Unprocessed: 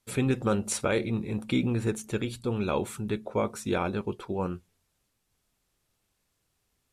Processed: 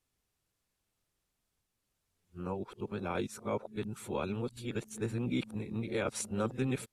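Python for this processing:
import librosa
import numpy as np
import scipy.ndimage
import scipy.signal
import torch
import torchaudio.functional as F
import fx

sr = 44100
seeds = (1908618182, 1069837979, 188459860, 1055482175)

y = x[::-1].copy()
y = y * librosa.db_to_amplitude(-7.0)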